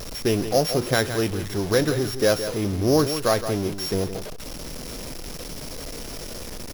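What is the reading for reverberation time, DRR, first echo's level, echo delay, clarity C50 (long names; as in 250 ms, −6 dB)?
no reverb audible, no reverb audible, −10.5 dB, 167 ms, no reverb audible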